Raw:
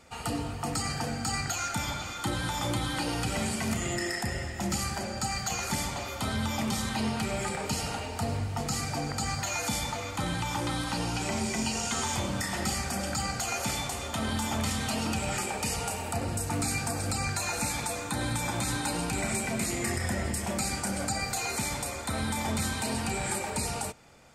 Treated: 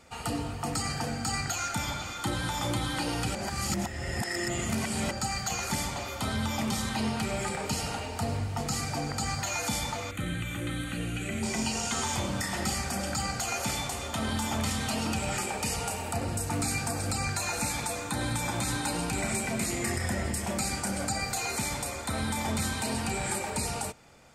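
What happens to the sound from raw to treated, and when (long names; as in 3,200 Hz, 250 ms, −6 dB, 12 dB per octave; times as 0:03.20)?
0:03.35–0:05.11: reverse
0:10.11–0:11.43: phaser with its sweep stopped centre 2,200 Hz, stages 4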